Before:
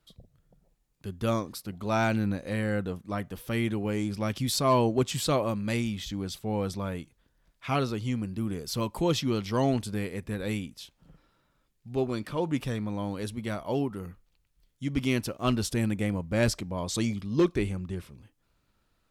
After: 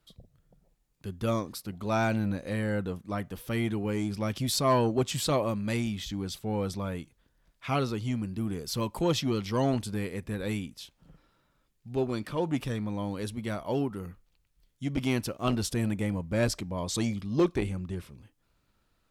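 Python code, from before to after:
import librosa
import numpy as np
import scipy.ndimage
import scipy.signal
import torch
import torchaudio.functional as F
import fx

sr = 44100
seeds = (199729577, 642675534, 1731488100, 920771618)

y = fx.transformer_sat(x, sr, knee_hz=270.0)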